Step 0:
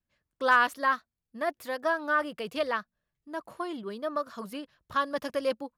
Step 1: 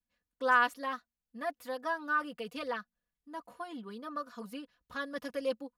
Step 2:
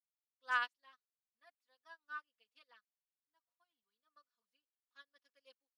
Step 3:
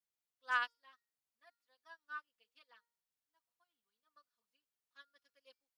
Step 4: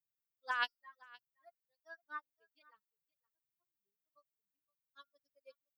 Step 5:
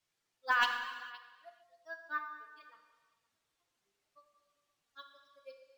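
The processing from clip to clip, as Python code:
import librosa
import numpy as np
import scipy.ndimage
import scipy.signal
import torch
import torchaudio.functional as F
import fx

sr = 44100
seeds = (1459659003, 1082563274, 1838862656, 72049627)

y1 = x + 0.93 * np.pad(x, (int(4.1 * sr / 1000.0), 0))[:len(x)]
y1 = y1 * librosa.db_to_amplitude(-8.5)
y2 = fx.bandpass_q(y1, sr, hz=4100.0, q=0.84)
y2 = fx.upward_expand(y2, sr, threshold_db=-54.0, expansion=2.5)
y2 = y2 * librosa.db_to_amplitude(1.0)
y3 = fx.comb_fb(y2, sr, f0_hz=470.0, decay_s=0.48, harmonics='all', damping=0.0, mix_pct=50)
y3 = y3 * librosa.db_to_amplitude(6.0)
y4 = fx.bin_expand(y3, sr, power=2.0)
y4 = fx.over_compress(y4, sr, threshold_db=-40.0, ratio=-1.0)
y4 = y4 + 10.0 ** (-23.0 / 20.0) * np.pad(y4, (int(518 * sr / 1000.0), 0))[:len(y4)]
y4 = y4 * librosa.db_to_amplitude(6.0)
y5 = 10.0 ** (-24.5 / 20.0) * np.tanh(y4 / 10.0 ** (-24.5 / 20.0))
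y5 = fx.rev_gated(y5, sr, seeds[0], gate_ms=490, shape='falling', drr_db=4.0)
y5 = np.interp(np.arange(len(y5)), np.arange(len(y5))[::2], y5[::2])
y5 = y5 * librosa.db_to_amplitude(7.0)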